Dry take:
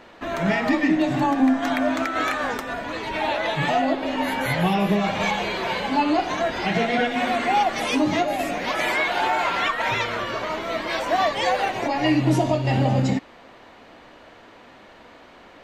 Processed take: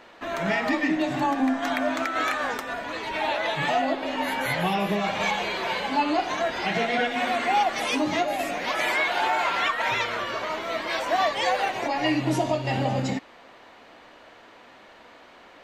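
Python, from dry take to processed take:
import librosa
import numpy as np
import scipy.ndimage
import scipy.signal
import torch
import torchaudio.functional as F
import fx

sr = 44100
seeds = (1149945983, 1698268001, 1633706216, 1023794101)

y = fx.low_shelf(x, sr, hz=310.0, db=-8.0)
y = y * 10.0 ** (-1.0 / 20.0)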